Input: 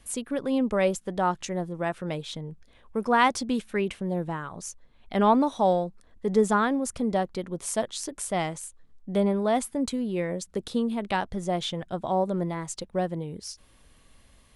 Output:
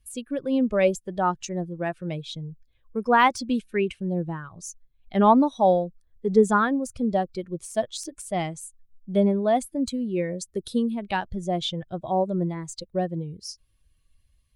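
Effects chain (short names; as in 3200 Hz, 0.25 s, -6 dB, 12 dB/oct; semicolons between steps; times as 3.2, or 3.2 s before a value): per-bin expansion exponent 1.5; de-esser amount 75%; 10.36–10.89 bell 10000 Hz +5 dB -> +14 dB 0.68 oct; gain +5 dB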